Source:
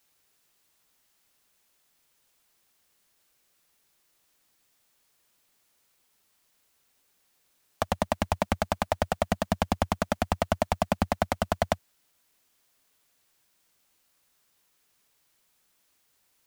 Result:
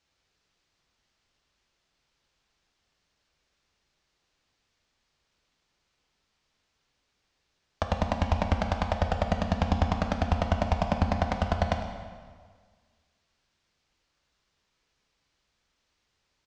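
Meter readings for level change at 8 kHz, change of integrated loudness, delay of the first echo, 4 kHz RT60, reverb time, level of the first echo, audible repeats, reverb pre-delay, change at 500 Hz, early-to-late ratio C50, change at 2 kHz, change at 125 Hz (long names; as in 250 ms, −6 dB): −8.5 dB, +0.5 dB, 104 ms, 1.4 s, 1.7 s, −14.5 dB, 1, 4 ms, −2.0 dB, 6.0 dB, −1.0 dB, +5.0 dB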